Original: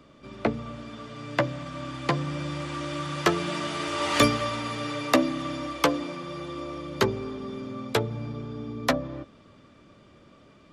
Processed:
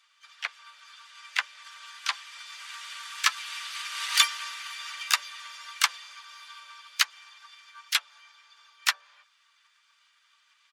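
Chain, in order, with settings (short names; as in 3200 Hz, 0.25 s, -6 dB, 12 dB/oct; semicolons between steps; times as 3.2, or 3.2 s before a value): bin magnitudes rounded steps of 15 dB; Bessel high-pass 2000 Hz, order 6; transient shaper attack +8 dB, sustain 0 dB; harmoniser -4 st -12 dB, +4 st -13 dB, +5 st -7 dB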